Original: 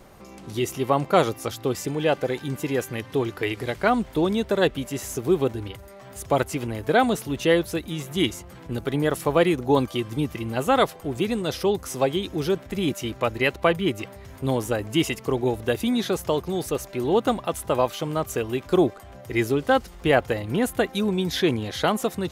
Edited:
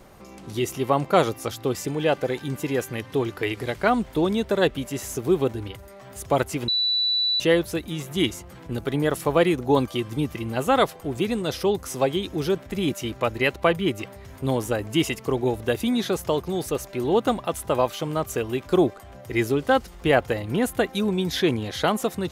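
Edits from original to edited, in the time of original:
6.68–7.40 s: bleep 3.96 kHz -19.5 dBFS

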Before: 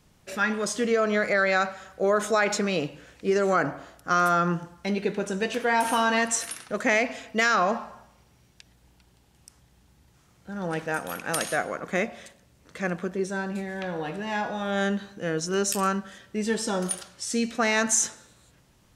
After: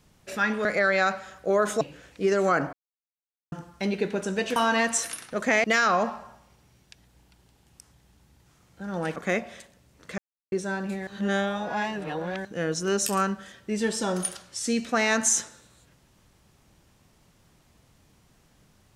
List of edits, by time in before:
0.65–1.19 s: delete
2.35–2.85 s: delete
3.77–4.56 s: mute
5.60–5.94 s: delete
7.02–7.32 s: delete
10.84–11.82 s: delete
12.84–13.18 s: mute
13.73–15.11 s: reverse

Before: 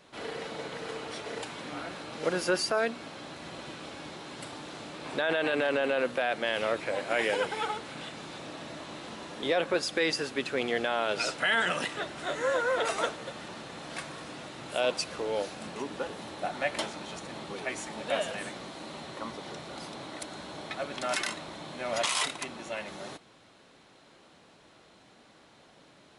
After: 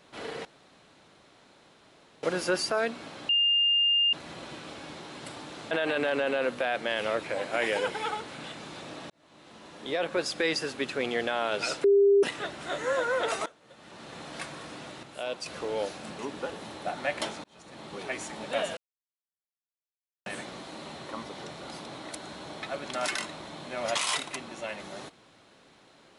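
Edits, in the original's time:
0.45–2.23 s: room tone
3.29 s: add tone 2.81 kHz -20.5 dBFS 0.84 s
4.87–5.28 s: delete
8.67–9.85 s: fade in
11.41–11.80 s: bleep 400 Hz -16.5 dBFS
13.03–13.72 s: fade in quadratic, from -22.5 dB
14.60–15.03 s: gain -6.5 dB
17.01–17.59 s: fade in
18.34 s: insert silence 1.49 s

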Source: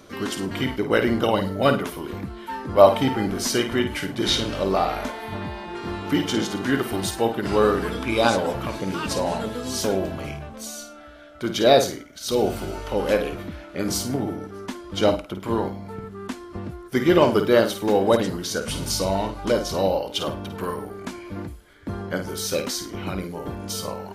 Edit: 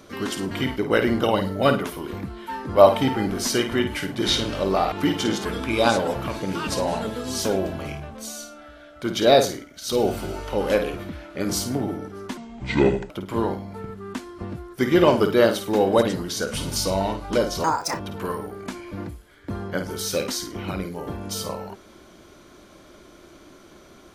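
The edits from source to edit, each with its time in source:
4.92–6.01 s: delete
6.54–7.84 s: delete
14.76–15.24 s: speed 66%
19.78–20.38 s: speed 168%

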